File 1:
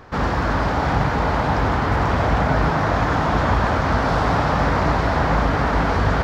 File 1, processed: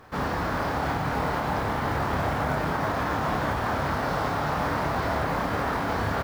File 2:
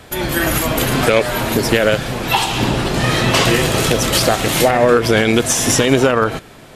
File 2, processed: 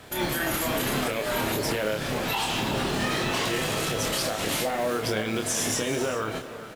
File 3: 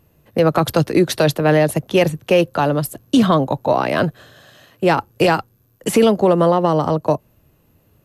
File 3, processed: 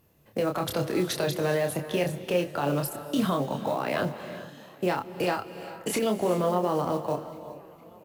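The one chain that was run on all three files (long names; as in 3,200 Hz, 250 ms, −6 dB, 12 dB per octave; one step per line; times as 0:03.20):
low-shelf EQ 110 Hz −7 dB
downward compressor 4 to 1, threshold −16 dBFS
brickwall limiter −12 dBFS
log-companded quantiser 6 bits
double-tracking delay 28 ms −5 dB
on a send: delay with a low-pass on its return 462 ms, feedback 73%, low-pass 3,200 Hz, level −23 dB
on the sum: reverb whose tail is shaped and stops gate 440 ms rising, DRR 11.5 dB
level −6.5 dB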